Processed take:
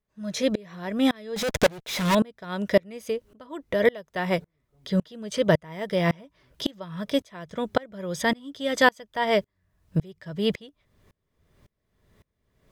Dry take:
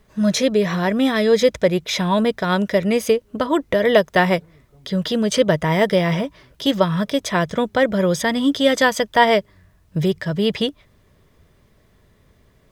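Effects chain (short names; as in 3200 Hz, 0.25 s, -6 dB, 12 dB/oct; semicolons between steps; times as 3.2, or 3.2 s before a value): 1.36–2.15 fuzz box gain 32 dB, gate -38 dBFS; dB-ramp tremolo swelling 1.8 Hz, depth 30 dB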